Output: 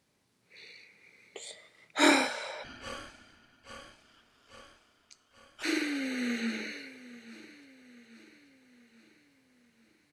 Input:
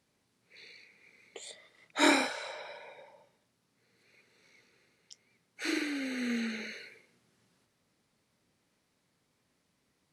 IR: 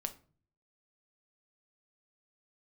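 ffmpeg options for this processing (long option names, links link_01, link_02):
-filter_complex "[0:a]bandreject=frequency=234.8:width_type=h:width=4,bandreject=frequency=469.6:width_type=h:width=4,bandreject=frequency=704.4:width_type=h:width=4,bandreject=frequency=939.2:width_type=h:width=4,bandreject=frequency=1174:width_type=h:width=4,bandreject=frequency=1408.8:width_type=h:width=4,bandreject=frequency=1643.6:width_type=h:width=4,bandreject=frequency=1878.4:width_type=h:width=4,bandreject=frequency=2113.2:width_type=h:width=4,bandreject=frequency=2348:width_type=h:width=4,bandreject=frequency=2582.8:width_type=h:width=4,bandreject=frequency=2817.6:width_type=h:width=4,bandreject=frequency=3052.4:width_type=h:width=4,bandreject=frequency=3287.2:width_type=h:width=4,bandreject=frequency=3522:width_type=h:width=4,bandreject=frequency=3756.8:width_type=h:width=4,bandreject=frequency=3991.6:width_type=h:width=4,bandreject=frequency=4226.4:width_type=h:width=4,bandreject=frequency=4461.2:width_type=h:width=4,bandreject=frequency=4696:width_type=h:width=4,bandreject=frequency=4930.8:width_type=h:width=4,bandreject=frequency=5165.6:width_type=h:width=4,bandreject=frequency=5400.4:width_type=h:width=4,bandreject=frequency=5635.2:width_type=h:width=4,bandreject=frequency=5870:width_type=h:width=4,bandreject=frequency=6104.8:width_type=h:width=4,bandreject=frequency=6339.6:width_type=h:width=4,bandreject=frequency=6574.4:width_type=h:width=4,bandreject=frequency=6809.2:width_type=h:width=4,bandreject=frequency=7044:width_type=h:width=4,bandreject=frequency=7278.8:width_type=h:width=4,bandreject=frequency=7513.6:width_type=h:width=4,bandreject=frequency=7748.4:width_type=h:width=4,bandreject=frequency=7983.2:width_type=h:width=4,bandreject=frequency=8218:width_type=h:width=4,bandreject=frequency=8452.8:width_type=h:width=4,bandreject=frequency=8687.6:width_type=h:width=4,bandreject=frequency=8922.4:width_type=h:width=4,asplit=2[link_01][link_02];[link_02]aecho=0:1:836|1672|2508|3344|4180:0.141|0.0735|0.0382|0.0199|0.0103[link_03];[link_01][link_03]amix=inputs=2:normalize=0,asoftclip=type=hard:threshold=-13.5dB,asplit=3[link_04][link_05][link_06];[link_04]afade=type=out:start_time=2.63:duration=0.02[link_07];[link_05]aeval=exprs='val(0)*sin(2*PI*840*n/s)':channel_layout=same,afade=type=in:start_time=2.63:duration=0.02,afade=type=out:start_time=5.62:duration=0.02[link_08];[link_06]afade=type=in:start_time=5.62:duration=0.02[link_09];[link_07][link_08][link_09]amix=inputs=3:normalize=0,volume=2dB"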